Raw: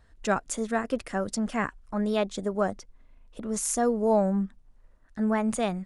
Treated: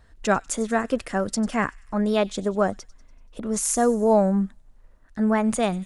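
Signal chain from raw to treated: thin delay 96 ms, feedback 53%, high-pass 3200 Hz, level -17.5 dB; gain +4.5 dB

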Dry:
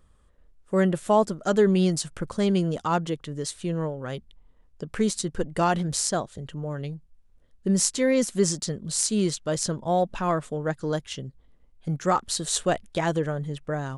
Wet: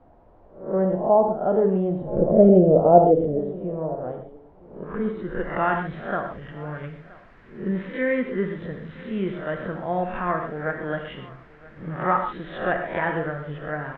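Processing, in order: spectral swells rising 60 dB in 0.45 s; downsampling 8000 Hz; added noise pink -51 dBFS; low-pass sweep 730 Hz -> 1800 Hz, 4.61–5.41; 2.01–3.39 resonant low shelf 780 Hz +8.5 dB, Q 3; on a send: echo 0.973 s -21.5 dB; on the sum: non-linear reverb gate 0.16 s flat, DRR 4 dB; gain -4 dB

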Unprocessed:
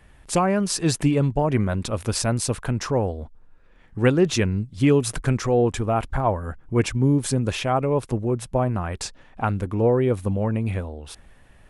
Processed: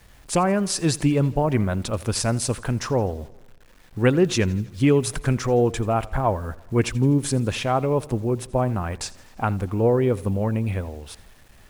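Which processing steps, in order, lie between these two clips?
bit-crush 9-bit; warbling echo 83 ms, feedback 59%, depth 59 cents, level -21 dB

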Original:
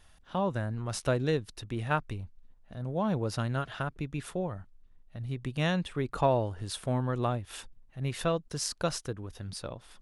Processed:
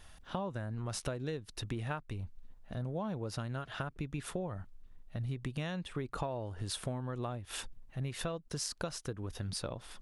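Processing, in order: compressor 12:1, threshold -38 dBFS, peak gain reduction 18.5 dB; gain +4 dB

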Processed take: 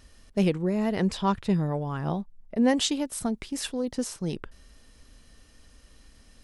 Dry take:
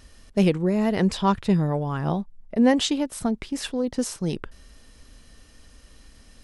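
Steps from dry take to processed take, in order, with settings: 2.68–3.98 high shelf 5400 Hz +7.5 dB; gain -4 dB

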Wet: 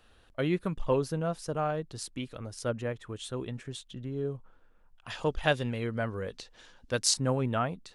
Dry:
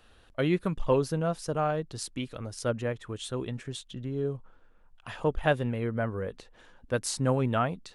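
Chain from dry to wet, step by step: 5.1–7.14 bell 5100 Hz +12.5 dB 1.8 oct; gain -2.5 dB

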